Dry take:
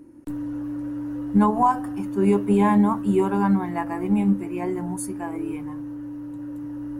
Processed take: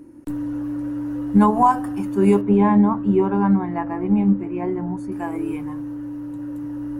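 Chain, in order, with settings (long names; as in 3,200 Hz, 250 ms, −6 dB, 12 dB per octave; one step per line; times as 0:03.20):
0:02.41–0:05.12: head-to-tape spacing loss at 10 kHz 28 dB
level +3.5 dB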